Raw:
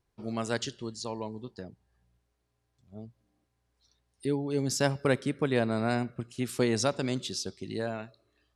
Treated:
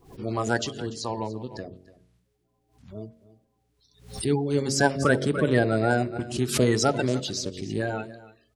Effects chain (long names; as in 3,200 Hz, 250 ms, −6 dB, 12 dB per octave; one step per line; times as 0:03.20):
spectral magnitudes quantised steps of 30 dB
high-shelf EQ 5,300 Hz −5 dB
hum removal 45.65 Hz, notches 15
on a send: single-tap delay 291 ms −18 dB
on the sum: background raised ahead of every attack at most 120 dB per second
level +6.5 dB